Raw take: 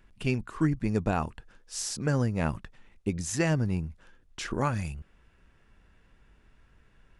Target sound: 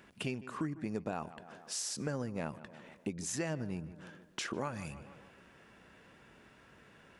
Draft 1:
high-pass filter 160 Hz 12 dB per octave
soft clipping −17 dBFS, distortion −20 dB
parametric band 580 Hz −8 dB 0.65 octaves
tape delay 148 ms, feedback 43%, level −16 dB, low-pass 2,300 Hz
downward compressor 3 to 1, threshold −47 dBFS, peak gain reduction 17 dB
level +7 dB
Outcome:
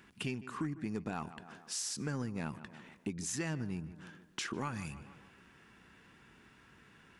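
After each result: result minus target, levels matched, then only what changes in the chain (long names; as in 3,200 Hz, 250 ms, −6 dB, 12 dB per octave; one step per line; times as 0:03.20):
soft clipping: distortion +14 dB; 500 Hz band −4.0 dB
change: soft clipping −8.5 dBFS, distortion −35 dB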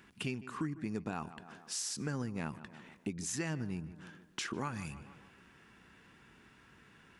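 500 Hz band −4.0 dB
change: parametric band 580 Hz +3 dB 0.65 octaves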